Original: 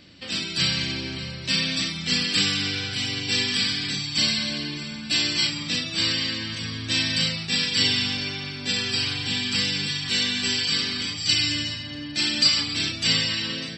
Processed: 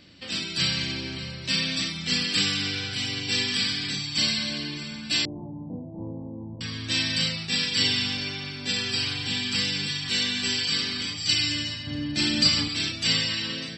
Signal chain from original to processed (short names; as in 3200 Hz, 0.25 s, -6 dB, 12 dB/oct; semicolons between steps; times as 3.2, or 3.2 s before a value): 5.25–6.61 steep low-pass 950 Hz 96 dB/oct; 11.87–12.68 low shelf 470 Hz +9.5 dB; gain -2 dB